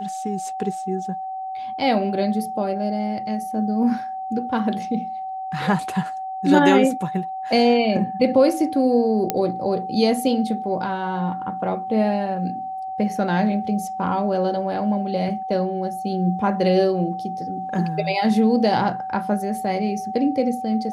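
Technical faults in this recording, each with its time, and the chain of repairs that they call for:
whine 760 Hz -27 dBFS
9.30 s: pop -5 dBFS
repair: de-click; band-stop 760 Hz, Q 30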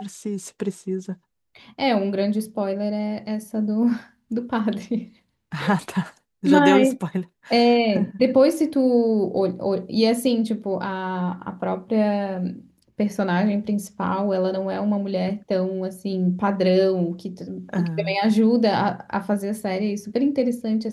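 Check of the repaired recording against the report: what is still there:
nothing left

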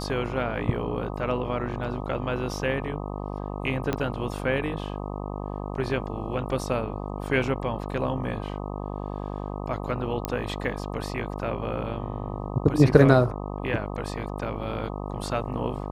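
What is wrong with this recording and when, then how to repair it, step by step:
buzz 50 Hz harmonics 25 -33 dBFS
3.93 s: pop -12 dBFS
10.25 s: pop -11 dBFS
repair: de-click; de-hum 50 Hz, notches 25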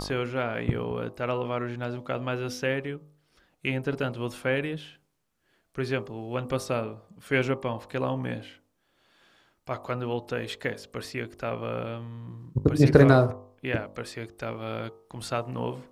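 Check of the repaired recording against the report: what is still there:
3.93 s: pop

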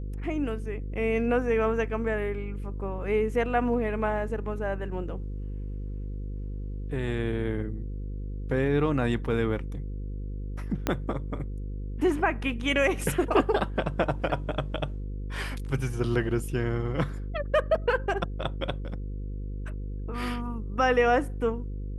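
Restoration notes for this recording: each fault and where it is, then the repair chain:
buzz 50 Hz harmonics 10 -34 dBFS
10.87 s: pop -11 dBFS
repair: de-click; de-hum 50 Hz, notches 10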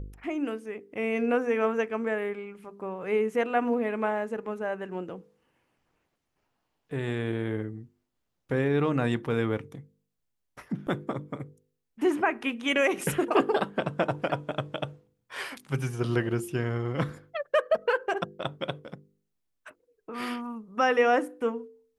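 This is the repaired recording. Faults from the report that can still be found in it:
10.87 s: pop

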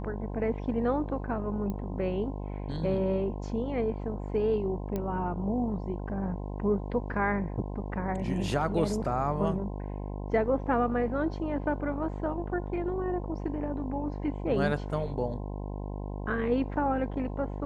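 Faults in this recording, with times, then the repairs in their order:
buzz 50 Hz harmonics 21 -36 dBFS
1.70 s: pop -23 dBFS
4.96 s: pop -20 dBFS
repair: de-click; de-hum 50 Hz, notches 21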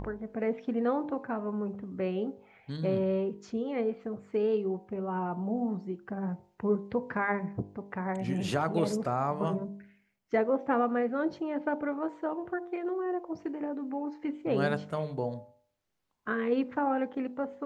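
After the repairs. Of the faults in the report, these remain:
nothing left

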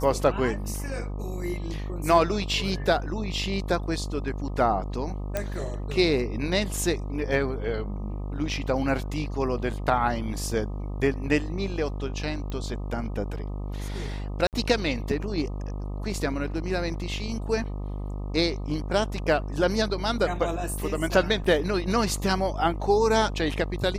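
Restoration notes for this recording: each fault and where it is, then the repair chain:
buzz 50 Hz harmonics 25 -32 dBFS
5.37 s: pop -13 dBFS
12.50 s: pop -22 dBFS
14.47–14.53 s: dropout 58 ms
21.44–21.45 s: dropout 5 ms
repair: de-click; de-hum 50 Hz, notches 25; interpolate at 14.47 s, 58 ms; interpolate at 21.44 s, 5 ms

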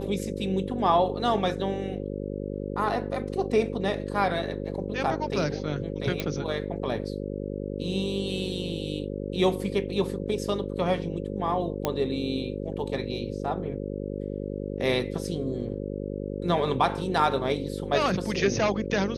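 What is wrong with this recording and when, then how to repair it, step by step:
buzz 50 Hz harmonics 11 -33 dBFS
6.20 s: pop -13 dBFS
11.85 s: pop -11 dBFS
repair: de-click; de-hum 50 Hz, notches 11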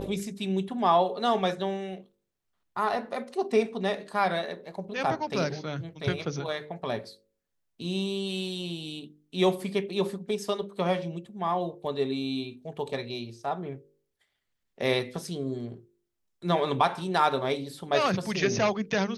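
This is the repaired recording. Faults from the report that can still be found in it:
nothing left

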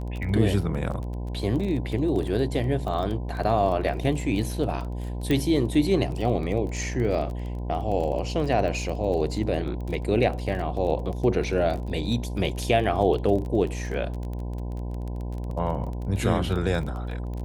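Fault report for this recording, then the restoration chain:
buzz 60 Hz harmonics 17 -31 dBFS
crackle 22 per s -31 dBFS
5.31 s: pop -13 dBFS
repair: de-click; de-hum 60 Hz, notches 17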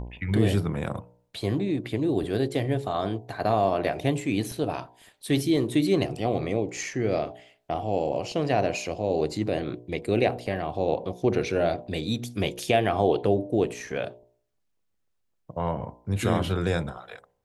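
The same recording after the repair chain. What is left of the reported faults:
nothing left

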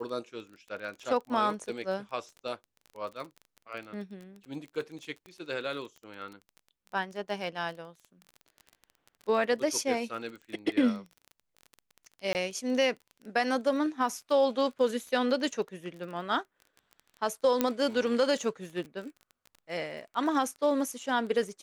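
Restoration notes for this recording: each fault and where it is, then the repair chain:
crackle 22 per s -38 dBFS
5.26 s: pop -34 dBFS
12.33–12.35 s: dropout 19 ms
17.61 s: pop -11 dBFS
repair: de-click; interpolate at 12.33 s, 19 ms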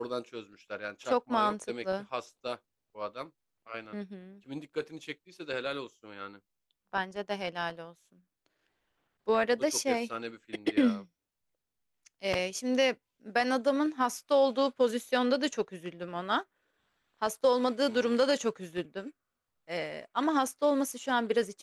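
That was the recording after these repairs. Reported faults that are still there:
nothing left

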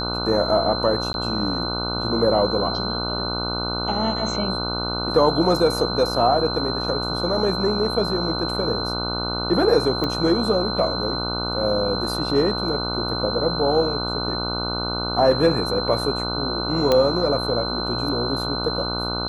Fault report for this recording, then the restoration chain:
buzz 60 Hz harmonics 25 -28 dBFS
whine 4.1 kHz -27 dBFS
1.13–1.14 s: dropout 11 ms
10.04 s: pop -12 dBFS
16.92 s: pop -6 dBFS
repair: de-click; de-hum 60 Hz, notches 25; band-stop 4.1 kHz, Q 30; interpolate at 1.13 s, 11 ms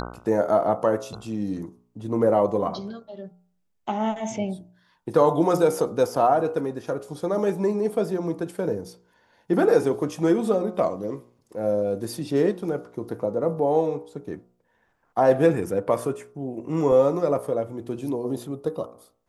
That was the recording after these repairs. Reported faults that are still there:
nothing left

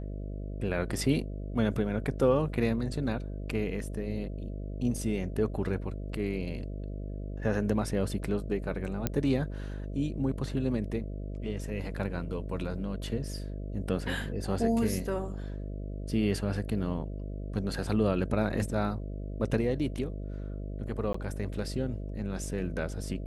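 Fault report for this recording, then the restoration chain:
buzz 50 Hz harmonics 13 -37 dBFS
9.07 s: pop -13 dBFS
21.13–21.14 s: dropout 14 ms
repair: de-click; de-hum 50 Hz, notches 13; interpolate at 21.13 s, 14 ms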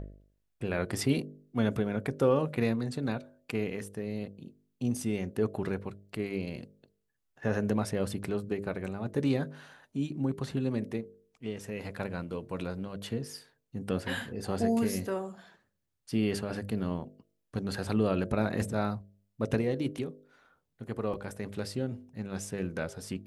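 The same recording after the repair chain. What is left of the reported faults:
nothing left

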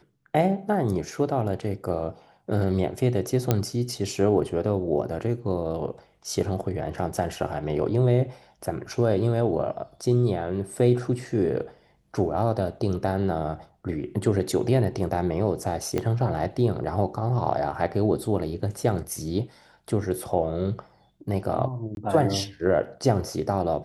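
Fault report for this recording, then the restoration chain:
3.51 s: pop -7 dBFS
15.98 s: pop -13 dBFS
21.95–21.97 s: dropout 21 ms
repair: de-click; interpolate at 21.95 s, 21 ms

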